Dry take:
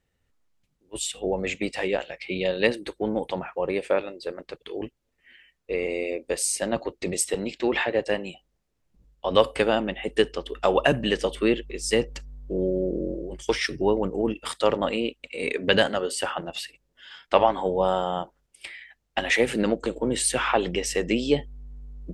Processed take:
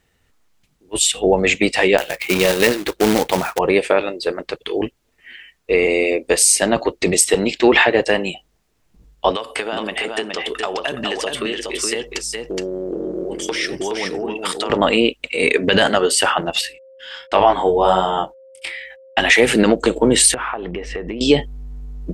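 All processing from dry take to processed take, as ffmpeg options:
-filter_complex "[0:a]asettb=1/sr,asplit=3[a][b][c];[a]atrim=end=1.984[d];[b]atrim=start=1.98:end=3.59,asetpts=PTS-STARTPTS,afade=t=in:d=0.004:c=qsin,afade=t=out:st=1.606:d=0.004:c=qsin,highshelf=f=7.1k:g=-11.5,adynamicsmooth=sensitivity=5.5:basefreq=5.5k,acrusher=bits=2:mode=log:mix=0:aa=0.000001[e];[c]atrim=start=3.586[f];[d][e]acrossfade=d=0.004:c1=hsin:c2=qsin[g];[g][f]acrossfade=d=0.004:c1=qsin:c2=hsin,asettb=1/sr,asplit=3[h][i][j];[h]atrim=end=9.314[k];[i]atrim=start=9.31:end=14.7,asetpts=PTS-STARTPTS,afade=t=in:d=0.004:c=qsin,afade=t=out:st=5.386:d=0.004:c=qsin,highpass=f=350:p=1,acompressor=threshold=-32dB:ratio=8:attack=3.2:release=140:knee=1:detection=peak,aecho=1:1:419:0.631,atrim=end_sample=237699[l];[j]atrim=start=14.696[m];[k][l]acrossfade=d=0.004:c1=hsin:c2=qsin[n];[n][m]acrossfade=d=0.004:c1=qsin:c2=hsin,asettb=1/sr,asplit=3[o][p][q];[o]atrim=end=16.614[r];[p]atrim=start=16.61:end=19.2,asetpts=PTS-STARTPTS,afade=t=in:d=0.004:c=qsin,afade=t=out:st=2.586:d=0.004:c=qsin,agate=range=-33dB:threshold=-55dB:ratio=16:release=100:detection=peak,flanger=delay=20:depth=4.3:speed=1.3,aeval=exprs='val(0)+0.00447*sin(2*PI*530*n/s)':c=same[s];[q]atrim=start=19.196[t];[r][s]acrossfade=d=0.004:c1=hsin:c2=qsin[u];[u][t]acrossfade=d=0.004:c1=qsin:c2=hsin,asettb=1/sr,asplit=3[v][w][x];[v]atrim=end=20.344[y];[w]atrim=start=20.34:end=21.21,asetpts=PTS-STARTPTS,afade=t=in:d=0.004:c=qsin,afade=t=out:st=0.866:d=0.004:c=qsin,lowpass=1.6k,asubboost=boost=5.5:cutoff=63,acompressor=threshold=-33dB:ratio=16:attack=3.2:release=140:knee=1:detection=peak[z];[x]atrim=start=21.206[aa];[y][z]acrossfade=d=0.004:c1=hsin:c2=qsin[ab];[ab][aa]acrossfade=d=0.004:c1=qsin:c2=hsin,lowshelf=f=340:g=-5,bandreject=f=540:w=12,alimiter=level_in=15dB:limit=-1dB:release=50:level=0:latency=1,volume=-1dB"

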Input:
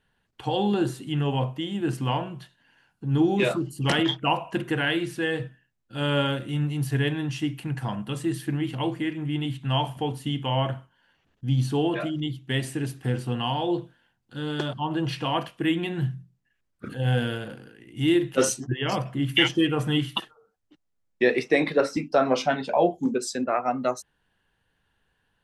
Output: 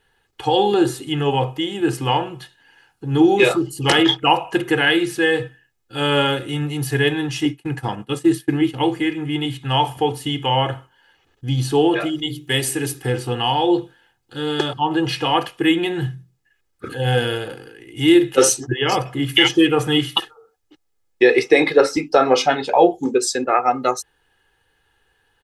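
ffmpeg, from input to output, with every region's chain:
-filter_complex "[0:a]asettb=1/sr,asplit=3[a][b][c];[a]atrim=end=7.454[d];[b]atrim=start=7.45:end=8.84,asetpts=PTS-STARTPTS,afade=t=in:d=0.004:c=qsin,afade=t=out:st=1.386:d=0.004:c=qsin,agate=range=-33dB:threshold=-29dB:ratio=3:release=100:detection=peak,equalizer=f=260:t=o:w=1.1:g=5[e];[c]atrim=start=8.836[f];[d][e]acrossfade=d=0.004:c1=hsin:c2=qsin[g];[g][f]acrossfade=d=0.004:c1=qsin:c2=hsin,asettb=1/sr,asplit=3[h][i][j];[h]atrim=end=12.094[k];[i]atrim=start=12.09:end=13.03,asetpts=PTS-STARTPTS,afade=t=in:d=0.004:c=qsin,afade=t=out:st=0.936:d=0.004:c=qsin,highshelf=f=7.6k:g=10.5,bandreject=f=50:t=h:w=6,bandreject=f=100:t=h:w=6,bandreject=f=150:t=h:w=6,bandreject=f=200:t=h:w=6,bandreject=f=250:t=h:w=6,bandreject=f=300:t=h:w=6,bandreject=f=350:t=h:w=6,bandreject=f=400:t=h:w=6,bandreject=f=450:t=h:w=6[l];[j]atrim=start=13.026[m];[k][l]acrossfade=d=0.004:c1=hsin:c2=qsin[n];[n][m]acrossfade=d=0.004:c1=qsin:c2=hsin,bass=f=250:g=-5,treble=f=4k:g=2,aecho=1:1:2.4:0.58,alimiter=level_in=8.5dB:limit=-1dB:release=50:level=0:latency=1,volume=-1dB"

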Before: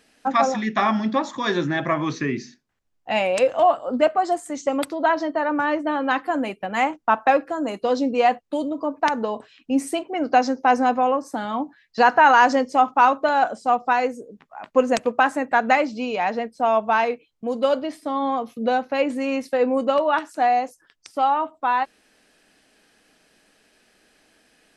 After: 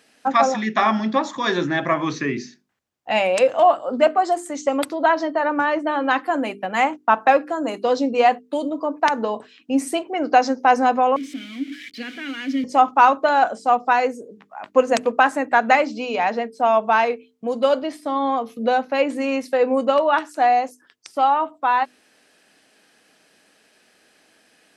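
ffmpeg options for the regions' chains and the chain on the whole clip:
-filter_complex "[0:a]asettb=1/sr,asplit=3[a][b][c];[a]atrim=end=11.164[d];[b]atrim=start=11.16:end=12.64,asetpts=PTS-STARTPTS,afade=t=in:d=0.004:c=qsin,afade=t=out:st=1.476:d=0.004:c=qsin,aeval=exprs='val(0)+0.5*0.0708*sgn(val(0))':c=same,asplit=3[e][f][g];[e]bandpass=f=270:t=q:w=8,volume=0dB[h];[f]bandpass=f=2.29k:t=q:w=8,volume=-6dB[i];[g]bandpass=f=3.01k:t=q:w=8,volume=-9dB[j];[h][i][j]amix=inputs=3:normalize=0,highshelf=f=3.5k:g=9[k];[c]atrim=start=12.636[l];[d][k]acrossfade=d=0.004:c1=hsin:c2=qsin[m];[m][l]acrossfade=d=0.004:c1=qsin:c2=hsin,highpass=74,lowshelf=f=130:g=-6,bandreject=f=50:t=h:w=6,bandreject=f=100:t=h:w=6,bandreject=f=150:t=h:w=6,bandreject=f=200:t=h:w=6,bandreject=f=250:t=h:w=6,bandreject=f=300:t=h:w=6,bandreject=f=350:t=h:w=6,bandreject=f=400:t=h:w=6,bandreject=f=450:t=h:w=6,volume=2.5dB"

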